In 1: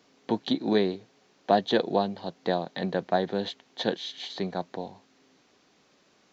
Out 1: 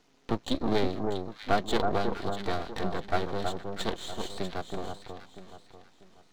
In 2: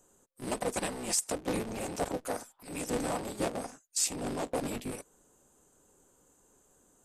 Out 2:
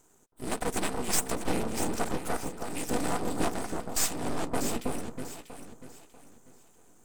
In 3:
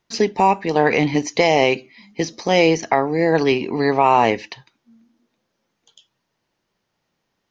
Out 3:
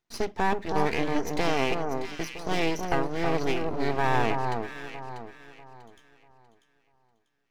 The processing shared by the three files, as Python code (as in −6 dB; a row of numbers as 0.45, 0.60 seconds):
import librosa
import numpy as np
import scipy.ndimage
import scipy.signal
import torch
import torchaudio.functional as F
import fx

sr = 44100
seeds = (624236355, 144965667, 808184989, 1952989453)

y = fx.notch_comb(x, sr, f0_hz=560.0)
y = np.maximum(y, 0.0)
y = fx.echo_alternate(y, sr, ms=321, hz=1400.0, feedback_pct=56, wet_db=-4)
y = librosa.util.normalize(y) * 10.0 ** (-9 / 20.0)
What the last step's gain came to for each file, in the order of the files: +1.5, +7.5, −6.5 decibels